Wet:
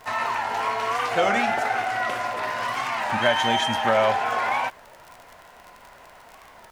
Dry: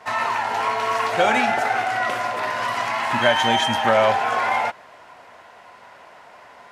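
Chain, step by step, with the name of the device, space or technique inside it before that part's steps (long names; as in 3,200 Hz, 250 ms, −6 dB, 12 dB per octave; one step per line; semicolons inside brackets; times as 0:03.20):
warped LP (wow of a warped record 33 1/3 rpm, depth 160 cents; surface crackle 50 per second −30 dBFS; pink noise bed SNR 34 dB)
level −3 dB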